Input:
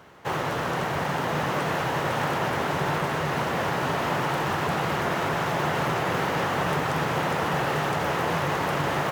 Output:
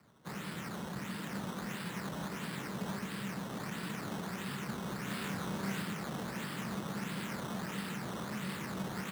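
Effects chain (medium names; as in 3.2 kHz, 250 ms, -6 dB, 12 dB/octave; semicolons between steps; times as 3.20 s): amplifier tone stack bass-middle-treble 6-0-2; decimation with a swept rate 13×, swing 100% 1.5 Hz; frequency shift +46 Hz; 5.05–5.82 s: doubling 31 ms -2 dB; trim +6.5 dB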